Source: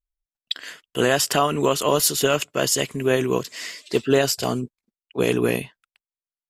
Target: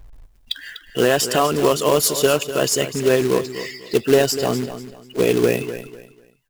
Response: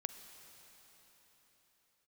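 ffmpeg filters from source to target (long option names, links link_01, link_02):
-af "aeval=exprs='val(0)+0.5*0.0237*sgn(val(0))':channel_layout=same,afftdn=noise_reduction=34:noise_floor=-31,adynamicequalizer=threshold=0.0251:dfrequency=440:dqfactor=1.6:tfrequency=440:tqfactor=1.6:attack=5:release=100:ratio=0.375:range=2:mode=boostabove:tftype=bell,acrusher=bits=3:mode=log:mix=0:aa=0.000001,aecho=1:1:247|494|741:0.251|0.0703|0.0197"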